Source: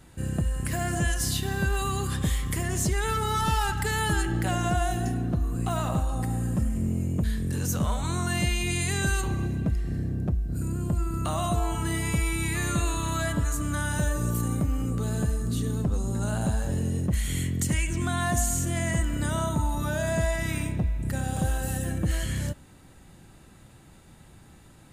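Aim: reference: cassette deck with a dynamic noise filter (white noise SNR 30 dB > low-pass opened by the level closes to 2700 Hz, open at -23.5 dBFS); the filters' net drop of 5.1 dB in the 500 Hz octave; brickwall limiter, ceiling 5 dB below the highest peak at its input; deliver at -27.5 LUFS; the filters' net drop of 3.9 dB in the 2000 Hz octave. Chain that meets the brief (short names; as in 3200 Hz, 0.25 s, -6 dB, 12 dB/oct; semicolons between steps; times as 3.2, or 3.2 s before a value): bell 500 Hz -7.5 dB; bell 2000 Hz -4.5 dB; limiter -20 dBFS; white noise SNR 30 dB; low-pass opened by the level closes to 2700 Hz, open at -23.5 dBFS; gain +2.5 dB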